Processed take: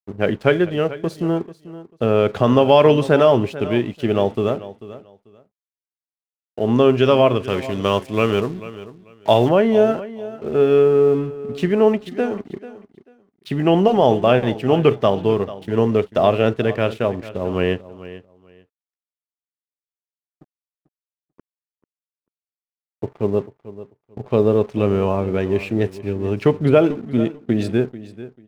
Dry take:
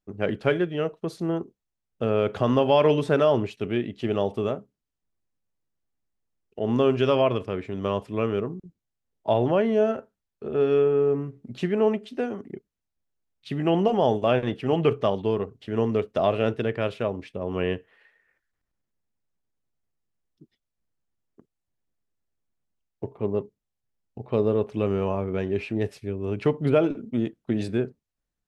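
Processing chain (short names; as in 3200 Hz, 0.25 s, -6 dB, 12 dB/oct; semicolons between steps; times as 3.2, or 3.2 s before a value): crossover distortion -51.5 dBFS; 7.43–9.49 high shelf 2100 Hz +11 dB; feedback echo 0.441 s, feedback 20%, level -16 dB; gain +7 dB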